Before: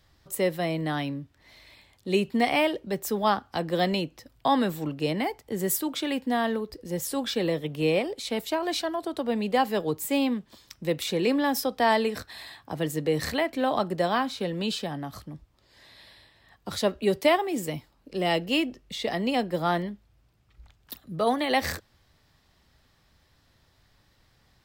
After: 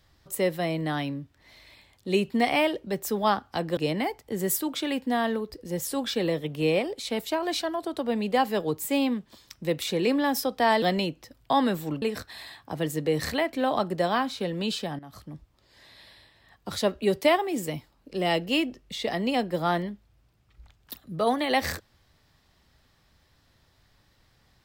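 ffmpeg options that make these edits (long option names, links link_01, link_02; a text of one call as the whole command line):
ffmpeg -i in.wav -filter_complex "[0:a]asplit=5[link_01][link_02][link_03][link_04][link_05];[link_01]atrim=end=3.772[link_06];[link_02]atrim=start=4.968:end=12.022[link_07];[link_03]atrim=start=3.768:end=4.972[link_08];[link_04]atrim=start=12.018:end=14.99,asetpts=PTS-STARTPTS,afade=type=out:start_time=2.968:duration=0.004:curve=hsin:silence=0.177828[link_09];[link_05]atrim=start=14.99,asetpts=PTS-STARTPTS,afade=type=in:duration=0.35:silence=0.177828[link_10];[link_06][link_07]acrossfade=duration=0.004:curve1=hsin:curve2=hsin[link_11];[link_11][link_08]acrossfade=duration=0.004:curve1=hsin:curve2=hsin[link_12];[link_09][link_10]concat=n=2:v=0:a=1[link_13];[link_12][link_13]acrossfade=duration=0.004:curve1=hsin:curve2=hsin" out.wav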